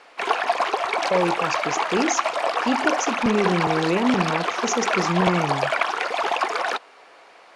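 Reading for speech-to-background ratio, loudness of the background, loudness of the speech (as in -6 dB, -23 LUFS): -1.5 dB, -23.5 LUFS, -25.0 LUFS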